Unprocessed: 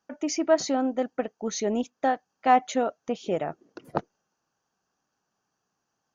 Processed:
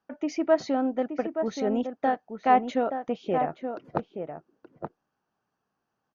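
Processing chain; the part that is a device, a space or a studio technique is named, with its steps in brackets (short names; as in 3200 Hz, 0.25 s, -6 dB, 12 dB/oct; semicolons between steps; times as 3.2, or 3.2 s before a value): shout across a valley (air absorption 210 m; outdoor echo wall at 150 m, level -7 dB)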